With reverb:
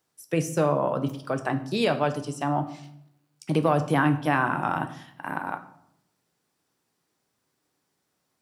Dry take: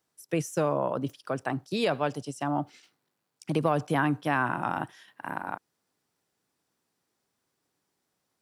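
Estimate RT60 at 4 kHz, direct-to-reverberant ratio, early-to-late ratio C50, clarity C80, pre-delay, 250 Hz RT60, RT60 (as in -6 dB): 0.50 s, 7.5 dB, 13.5 dB, 16.5 dB, 7 ms, 0.95 s, 0.75 s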